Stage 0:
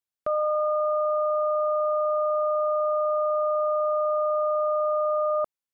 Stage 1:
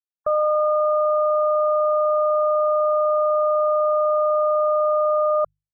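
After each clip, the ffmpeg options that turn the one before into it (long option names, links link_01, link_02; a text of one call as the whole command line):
ffmpeg -i in.wav -af "afftfilt=real='re*gte(hypot(re,im),0.0112)':imag='im*gte(hypot(re,im),0.0112)':win_size=1024:overlap=0.75,bandreject=frequency=50:width_type=h:width=6,bandreject=frequency=100:width_type=h:width=6,bandreject=frequency=150:width_type=h:width=6,aecho=1:1:1.7:0.81" out.wav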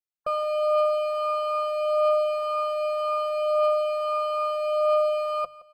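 ffmpeg -i in.wav -af "asoftclip=type=hard:threshold=-16.5dB,flanger=delay=5.3:depth=2.3:regen=37:speed=0.35:shape=triangular,aecho=1:1:169|338|507:0.112|0.0426|0.0162" out.wav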